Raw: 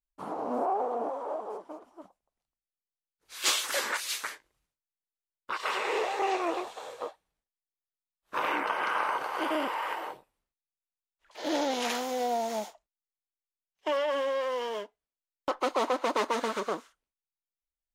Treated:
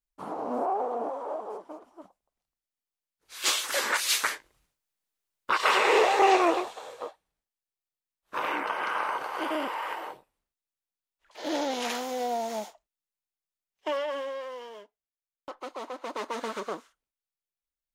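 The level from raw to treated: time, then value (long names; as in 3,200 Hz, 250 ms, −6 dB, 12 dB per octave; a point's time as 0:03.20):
0:03.69 +0.5 dB
0:04.14 +8.5 dB
0:06.42 +8.5 dB
0:06.82 −0.5 dB
0:13.88 −0.5 dB
0:14.76 −10.5 dB
0:15.89 −10.5 dB
0:16.49 −2.5 dB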